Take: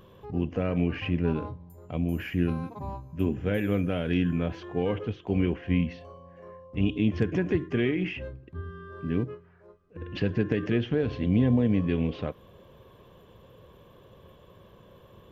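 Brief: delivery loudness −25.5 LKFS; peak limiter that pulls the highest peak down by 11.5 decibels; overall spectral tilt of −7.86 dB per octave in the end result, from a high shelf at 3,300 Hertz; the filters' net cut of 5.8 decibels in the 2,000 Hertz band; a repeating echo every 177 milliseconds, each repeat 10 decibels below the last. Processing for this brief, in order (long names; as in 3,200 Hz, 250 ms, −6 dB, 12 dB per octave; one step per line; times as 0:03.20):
parametric band 2,000 Hz −5 dB
high-shelf EQ 3,300 Hz −7 dB
brickwall limiter −23 dBFS
repeating echo 177 ms, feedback 32%, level −10 dB
level +8.5 dB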